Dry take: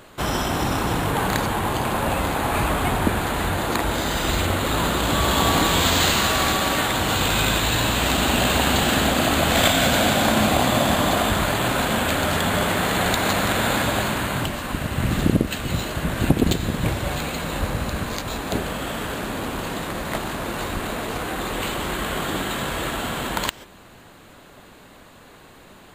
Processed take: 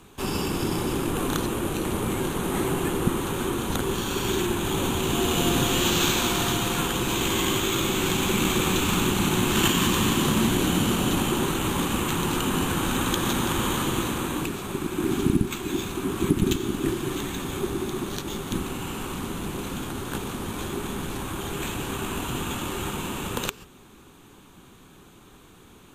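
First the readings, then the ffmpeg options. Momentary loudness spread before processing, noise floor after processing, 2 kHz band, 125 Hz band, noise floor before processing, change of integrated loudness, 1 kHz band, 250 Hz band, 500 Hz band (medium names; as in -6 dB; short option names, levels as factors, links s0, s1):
10 LU, -51 dBFS, -7.5 dB, -3.5 dB, -47 dBFS, -4.0 dB, -7.0 dB, -1.0 dB, -3.5 dB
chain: -af "afreqshift=-440,equalizer=f=630:t=o:w=0.33:g=-11,equalizer=f=2000:t=o:w=0.33:g=-7,equalizer=f=10000:t=o:w=0.33:g=4,volume=0.708"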